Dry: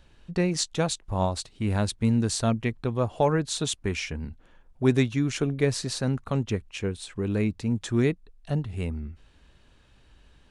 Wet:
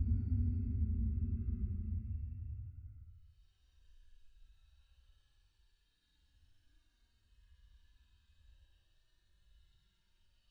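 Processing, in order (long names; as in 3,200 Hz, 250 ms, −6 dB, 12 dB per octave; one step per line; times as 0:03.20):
spectral dynamics exaggerated over time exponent 1.5
flat-topped bell 6,300 Hz +10.5 dB
extreme stretch with random phases 16×, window 0.05 s, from 0:08.96
level +1.5 dB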